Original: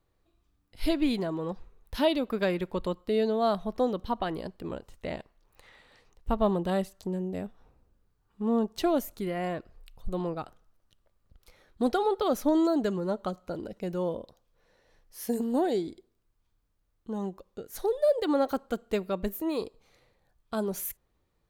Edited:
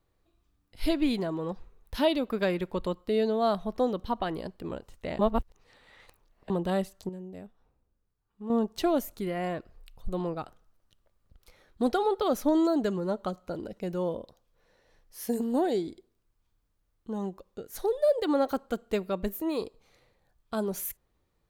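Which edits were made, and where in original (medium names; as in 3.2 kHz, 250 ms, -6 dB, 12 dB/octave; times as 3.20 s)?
5.19–6.50 s: reverse
7.09–8.50 s: gain -9 dB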